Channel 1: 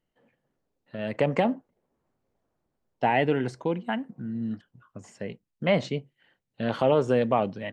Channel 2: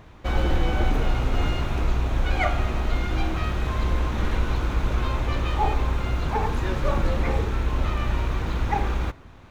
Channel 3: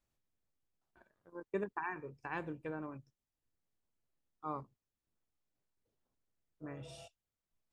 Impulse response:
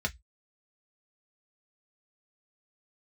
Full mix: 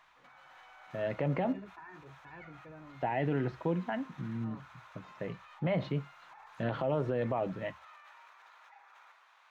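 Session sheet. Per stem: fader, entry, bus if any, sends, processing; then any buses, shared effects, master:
−5.0 dB, 0.00 s, no bus, send −12 dB, low-pass filter 4,000 Hz 24 dB per octave
−10.0 dB, 0.00 s, bus A, send −23 dB, high-pass filter 900 Hz 24 dB per octave; high-shelf EQ 7,100 Hz −6.5 dB; automatic ducking −12 dB, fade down 1.25 s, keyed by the first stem
−11.5 dB, 0.00 s, bus A, send −6.5 dB, no processing
bus A: 0.0 dB, compressor whose output falls as the input rises −56 dBFS, ratio −1; brickwall limiter −46.5 dBFS, peak gain reduction 5 dB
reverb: on, RT60 0.10 s, pre-delay 3 ms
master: low-shelf EQ 160 Hz +6 dB; brickwall limiter −22.5 dBFS, peak gain reduction 10.5 dB

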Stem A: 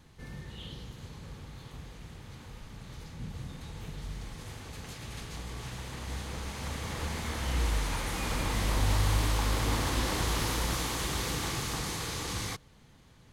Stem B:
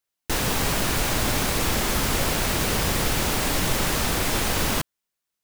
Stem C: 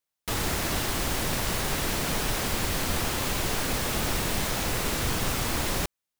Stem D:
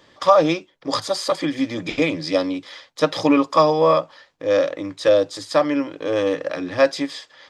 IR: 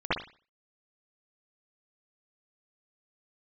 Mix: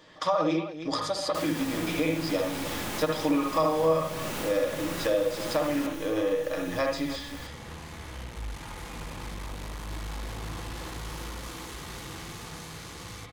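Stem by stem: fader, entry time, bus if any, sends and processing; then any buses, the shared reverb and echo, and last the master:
−6.0 dB, 0.70 s, send −12 dB, echo send −15 dB, tube saturation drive 31 dB, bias 0.6
−0.5 dB, 1.05 s, send −20 dB, no echo send, high-pass filter 95 Hz; automatic ducking −10 dB, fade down 1.90 s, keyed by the fourth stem
−10.5 dB, 1.30 s, no send, echo send −6.5 dB, phases set to zero 285 Hz
−3.5 dB, 0.00 s, send −12.5 dB, echo send −15.5 dB, comb filter 6.4 ms, depth 43%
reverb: on, pre-delay 55 ms
echo: single-tap delay 309 ms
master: downward compressor 2 to 1, threshold −31 dBFS, peak gain reduction 13.5 dB

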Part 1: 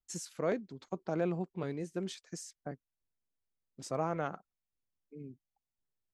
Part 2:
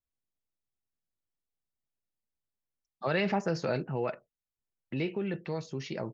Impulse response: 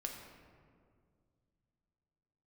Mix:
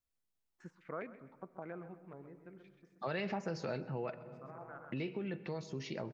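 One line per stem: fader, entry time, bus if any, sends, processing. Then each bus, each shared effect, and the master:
−8.5 dB, 0.50 s, send −16 dB, echo send −18 dB, low-pass on a step sequencer 9.8 Hz 920–2,300 Hz; automatic ducking −18 dB, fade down 1.95 s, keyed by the second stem
−1.0 dB, 0.00 s, send −10.5 dB, echo send −21 dB, no processing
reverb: on, RT60 2.1 s, pre-delay 4 ms
echo: repeating echo 130 ms, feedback 27%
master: downward compressor 2 to 1, threshold −42 dBFS, peak gain reduction 10 dB

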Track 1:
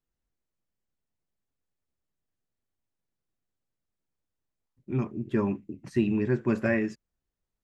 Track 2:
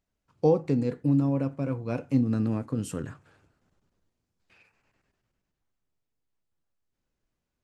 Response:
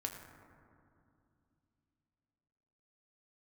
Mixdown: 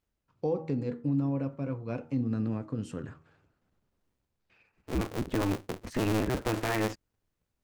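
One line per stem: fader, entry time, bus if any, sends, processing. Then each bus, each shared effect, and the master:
+2.5 dB, 0.00 s, no send, sub-harmonics by changed cycles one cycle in 2, inverted; automatic ducking −8 dB, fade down 0.35 s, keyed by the second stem
−4.0 dB, 0.00 s, no send, Bessel low-pass filter 4,700 Hz, order 2; hum removal 79.69 Hz, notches 17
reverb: not used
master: brickwall limiter −20.5 dBFS, peak gain reduction 10 dB

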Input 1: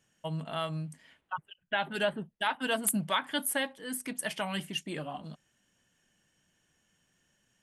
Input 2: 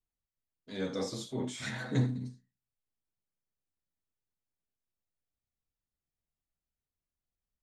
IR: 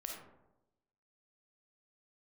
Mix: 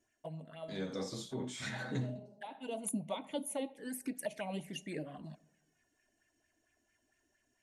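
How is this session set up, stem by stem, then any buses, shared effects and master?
−4.0 dB, 0.00 s, send −16.5 dB, flanger swept by the level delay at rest 3 ms, full sweep at −31.5 dBFS; thirty-one-band graphic EQ 630 Hz +4 dB, 1,250 Hz −8 dB, 3,150 Hz −10 dB; auto-filter bell 4.4 Hz 270–2,500 Hz +11 dB; automatic ducking −21 dB, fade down 0.90 s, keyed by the second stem
+2.5 dB, 0.00 s, no send, noise gate with hold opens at −50 dBFS; tuned comb filter 190 Hz, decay 0.26 s, harmonics all, mix 40%; every ending faded ahead of time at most 160 dB per second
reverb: on, RT60 0.95 s, pre-delay 10 ms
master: downward compressor 2 to 1, threshold −38 dBFS, peak gain reduction 7.5 dB

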